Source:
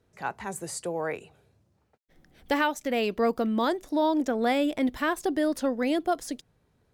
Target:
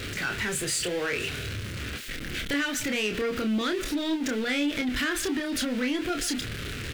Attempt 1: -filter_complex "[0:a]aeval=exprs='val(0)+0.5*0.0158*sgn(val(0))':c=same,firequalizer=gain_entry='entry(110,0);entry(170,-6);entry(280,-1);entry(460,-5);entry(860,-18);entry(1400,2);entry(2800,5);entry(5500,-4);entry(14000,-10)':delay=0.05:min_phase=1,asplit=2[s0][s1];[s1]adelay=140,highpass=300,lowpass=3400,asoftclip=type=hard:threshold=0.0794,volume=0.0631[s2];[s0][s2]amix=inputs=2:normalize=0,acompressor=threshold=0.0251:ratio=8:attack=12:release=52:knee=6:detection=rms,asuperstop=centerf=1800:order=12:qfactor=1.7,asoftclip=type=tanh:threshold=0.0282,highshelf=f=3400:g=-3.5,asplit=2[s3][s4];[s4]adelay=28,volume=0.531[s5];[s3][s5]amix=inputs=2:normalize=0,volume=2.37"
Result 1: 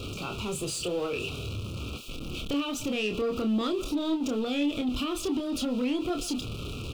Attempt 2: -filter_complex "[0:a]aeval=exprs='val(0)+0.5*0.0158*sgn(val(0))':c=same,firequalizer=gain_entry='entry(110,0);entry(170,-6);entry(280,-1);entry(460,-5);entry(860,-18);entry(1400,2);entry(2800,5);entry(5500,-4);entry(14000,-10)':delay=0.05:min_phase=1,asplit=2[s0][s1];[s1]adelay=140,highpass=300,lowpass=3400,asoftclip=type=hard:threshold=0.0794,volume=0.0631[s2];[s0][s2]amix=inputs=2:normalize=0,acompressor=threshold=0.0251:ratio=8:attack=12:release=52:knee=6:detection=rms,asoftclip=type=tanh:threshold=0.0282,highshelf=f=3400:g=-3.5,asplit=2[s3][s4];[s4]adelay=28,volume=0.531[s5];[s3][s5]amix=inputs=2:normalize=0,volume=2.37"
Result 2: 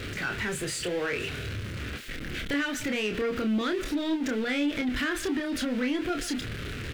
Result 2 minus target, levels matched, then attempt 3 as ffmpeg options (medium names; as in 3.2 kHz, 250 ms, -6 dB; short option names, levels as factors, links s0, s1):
8 kHz band -5.0 dB
-filter_complex "[0:a]aeval=exprs='val(0)+0.5*0.0158*sgn(val(0))':c=same,firequalizer=gain_entry='entry(110,0);entry(170,-6);entry(280,-1);entry(460,-5);entry(860,-18);entry(1400,2);entry(2800,5);entry(5500,-4);entry(14000,-10)':delay=0.05:min_phase=1,asplit=2[s0][s1];[s1]adelay=140,highpass=300,lowpass=3400,asoftclip=type=hard:threshold=0.0794,volume=0.0631[s2];[s0][s2]amix=inputs=2:normalize=0,acompressor=threshold=0.0251:ratio=8:attack=12:release=52:knee=6:detection=rms,asoftclip=type=tanh:threshold=0.0282,highshelf=f=3400:g=4,asplit=2[s3][s4];[s4]adelay=28,volume=0.531[s5];[s3][s5]amix=inputs=2:normalize=0,volume=2.37"